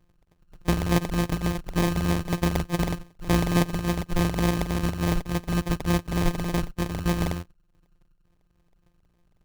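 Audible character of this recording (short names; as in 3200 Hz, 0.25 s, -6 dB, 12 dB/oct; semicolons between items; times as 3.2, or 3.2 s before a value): a buzz of ramps at a fixed pitch in blocks of 256 samples; phasing stages 2, 3.4 Hz, lowest notch 420–2200 Hz; aliases and images of a low sample rate 1400 Hz, jitter 0%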